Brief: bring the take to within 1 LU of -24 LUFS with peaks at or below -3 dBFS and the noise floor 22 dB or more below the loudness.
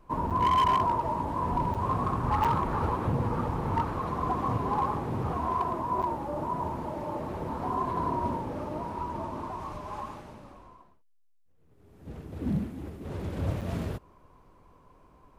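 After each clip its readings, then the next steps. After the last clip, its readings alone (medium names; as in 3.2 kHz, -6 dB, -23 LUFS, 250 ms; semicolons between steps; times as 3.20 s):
clipped samples 0.5%; clipping level -19.5 dBFS; dropouts 5; longest dropout 7.1 ms; loudness -30.5 LUFS; peak level -19.5 dBFS; loudness target -24.0 LUFS
-> clip repair -19.5 dBFS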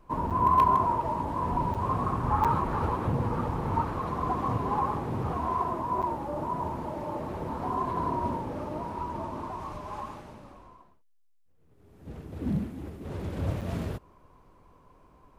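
clipped samples 0.0%; dropouts 5; longest dropout 7.1 ms
-> interpolate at 0.30/1.74/2.44/6.02/13.61 s, 7.1 ms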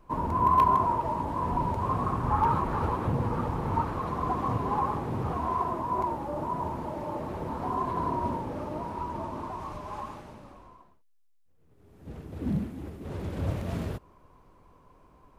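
dropouts 0; loudness -30.0 LUFS; peak level -10.5 dBFS; loudness target -24.0 LUFS
-> trim +6 dB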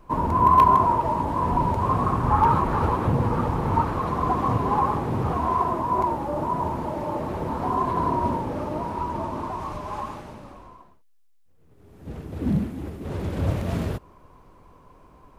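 loudness -24.0 LUFS; peak level -4.5 dBFS; noise floor -54 dBFS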